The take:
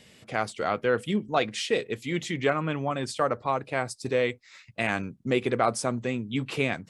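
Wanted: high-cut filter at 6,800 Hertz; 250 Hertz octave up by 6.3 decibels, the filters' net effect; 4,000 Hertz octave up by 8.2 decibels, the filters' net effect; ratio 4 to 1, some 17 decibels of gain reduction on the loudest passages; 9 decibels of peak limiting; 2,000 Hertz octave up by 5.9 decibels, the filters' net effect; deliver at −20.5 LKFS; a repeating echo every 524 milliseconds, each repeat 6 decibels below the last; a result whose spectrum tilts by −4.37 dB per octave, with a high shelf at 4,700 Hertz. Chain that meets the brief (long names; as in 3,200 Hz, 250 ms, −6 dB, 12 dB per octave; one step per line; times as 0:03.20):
low-pass filter 6,800 Hz
parametric band 250 Hz +7.5 dB
parametric band 2,000 Hz +4.5 dB
parametric band 4,000 Hz +7.5 dB
high-shelf EQ 4,700 Hz +4 dB
downward compressor 4 to 1, threshold −37 dBFS
brickwall limiter −27.5 dBFS
repeating echo 524 ms, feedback 50%, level −6 dB
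level +18.5 dB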